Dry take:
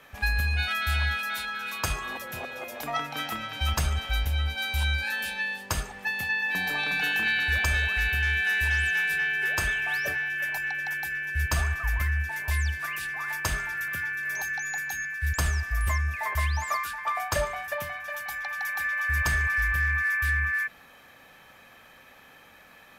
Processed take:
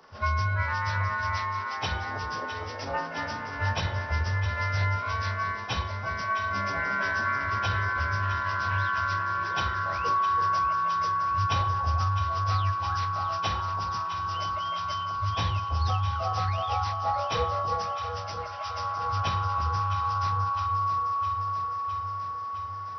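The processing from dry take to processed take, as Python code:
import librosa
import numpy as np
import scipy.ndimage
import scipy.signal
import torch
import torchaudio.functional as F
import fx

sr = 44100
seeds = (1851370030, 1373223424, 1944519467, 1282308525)

y = fx.partial_stretch(x, sr, pct=77)
y = fx.echo_alternate(y, sr, ms=330, hz=910.0, feedback_pct=83, wet_db=-8.0)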